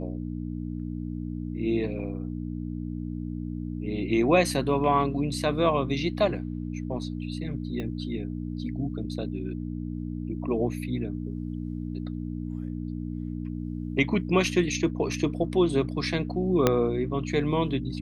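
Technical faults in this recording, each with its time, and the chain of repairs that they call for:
hum 60 Hz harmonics 5 -33 dBFS
7.80 s: pop -22 dBFS
16.67 s: pop -6 dBFS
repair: de-click; de-hum 60 Hz, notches 5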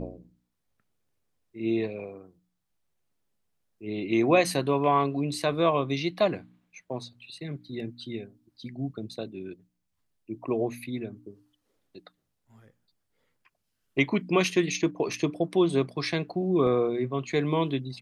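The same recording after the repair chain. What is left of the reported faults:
7.80 s: pop
16.67 s: pop

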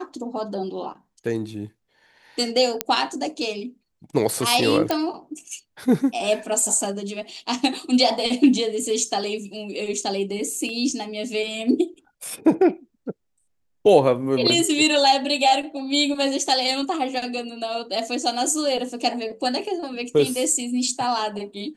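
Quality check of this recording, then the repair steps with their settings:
2.81 s: pop -3 dBFS
4.91 s: pop -7 dBFS
10.69 s: dropout 2.3 ms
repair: de-click; interpolate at 10.69 s, 2.3 ms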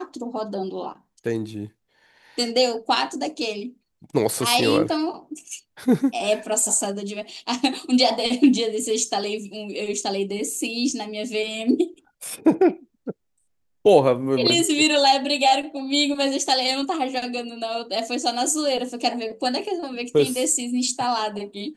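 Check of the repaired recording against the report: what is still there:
nothing left

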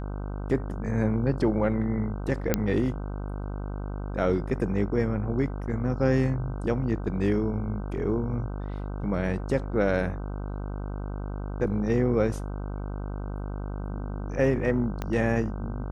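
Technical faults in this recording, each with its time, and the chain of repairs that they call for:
buzz 50 Hz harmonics 31 -33 dBFS
2.54 s: pop -8 dBFS
15.02 s: pop -17 dBFS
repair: de-click; de-hum 50 Hz, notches 31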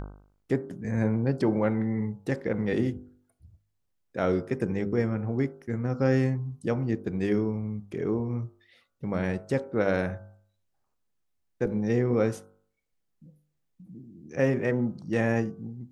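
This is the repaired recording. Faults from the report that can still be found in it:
15.02 s: pop

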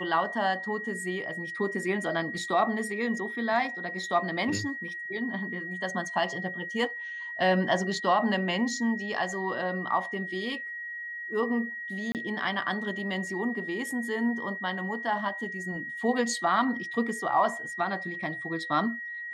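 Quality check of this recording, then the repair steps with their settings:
whine 1.9 kHz -35 dBFS
12.12–12.15 s: dropout 28 ms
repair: band-stop 1.9 kHz, Q 30; interpolate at 12.12 s, 28 ms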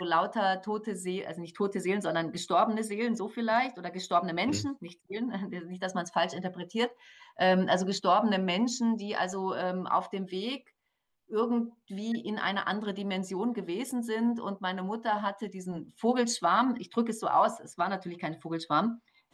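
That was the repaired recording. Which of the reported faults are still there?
nothing left

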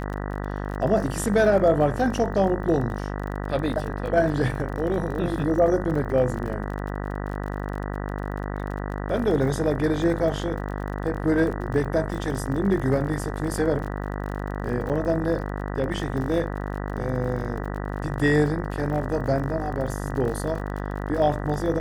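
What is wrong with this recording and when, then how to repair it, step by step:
buzz 50 Hz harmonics 39 -30 dBFS
crackle 37 per s -32 dBFS
14.89–14.90 s: dropout 7.9 ms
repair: de-click; de-hum 50 Hz, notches 39; interpolate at 14.89 s, 7.9 ms

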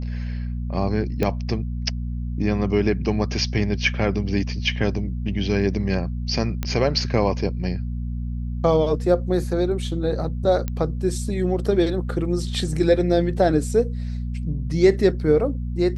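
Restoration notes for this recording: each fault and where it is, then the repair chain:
hum 60 Hz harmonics 4 -27 dBFS
1.23 s: pop -10 dBFS
6.63 s: pop -11 dBFS
10.68 s: pop -13 dBFS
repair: de-click; de-hum 60 Hz, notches 4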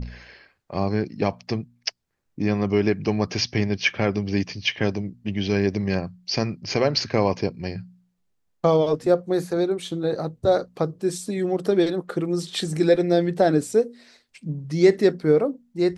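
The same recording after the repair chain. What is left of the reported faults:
nothing left

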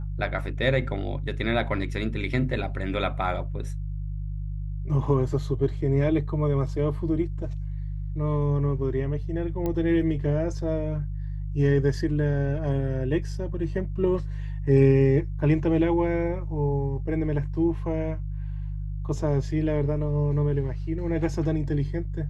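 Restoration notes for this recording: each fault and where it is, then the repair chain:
hum 50 Hz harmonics 3 -31 dBFS
9.66 s: pop -17 dBFS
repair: de-click; de-hum 50 Hz, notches 3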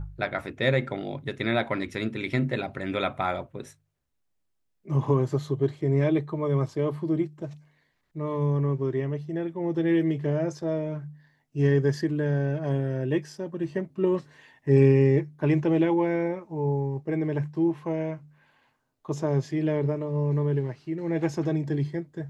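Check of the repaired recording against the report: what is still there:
nothing left

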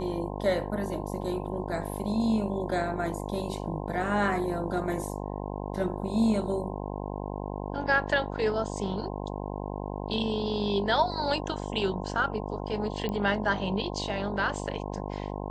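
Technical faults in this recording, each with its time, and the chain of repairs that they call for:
buzz 50 Hz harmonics 21 -35 dBFS
13.09 s: pop -20 dBFS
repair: de-click; de-hum 50 Hz, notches 21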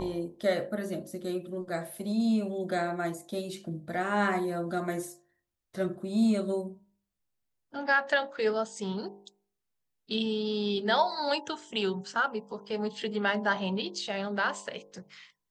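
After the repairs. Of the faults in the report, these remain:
nothing left

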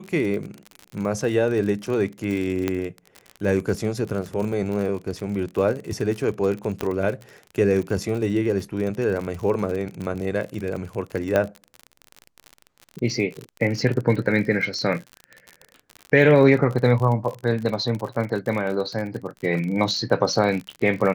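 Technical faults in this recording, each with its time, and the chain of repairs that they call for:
crackle 44 per s -28 dBFS
2.68 s: pop -10 dBFS
6.81 s: pop -11 dBFS
11.36 s: pop -9 dBFS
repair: de-click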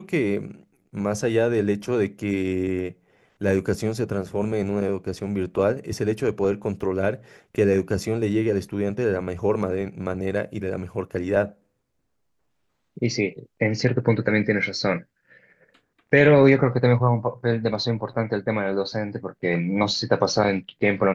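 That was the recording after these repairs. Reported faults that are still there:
6.81 s: pop

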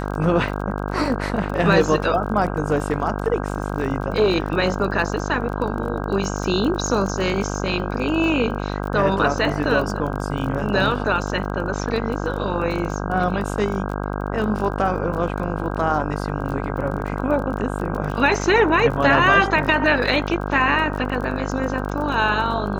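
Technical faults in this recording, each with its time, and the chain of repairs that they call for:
buzz 50 Hz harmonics 32 -26 dBFS
crackle 26 per s -28 dBFS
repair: de-click; de-hum 50 Hz, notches 32

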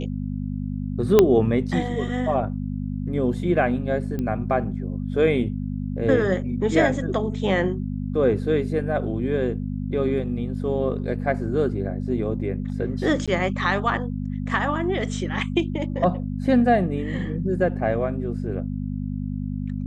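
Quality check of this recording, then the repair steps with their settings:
hum 50 Hz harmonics 5 -28 dBFS
1.19 s: pop -2 dBFS
4.19 s: pop -17 dBFS
13.26–13.28 s: dropout 16 ms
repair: de-click; de-hum 50 Hz, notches 5; interpolate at 13.26 s, 16 ms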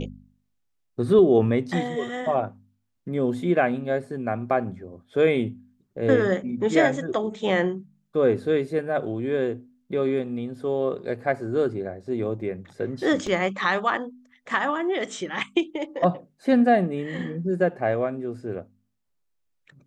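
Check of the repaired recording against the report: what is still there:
1.19 s: pop

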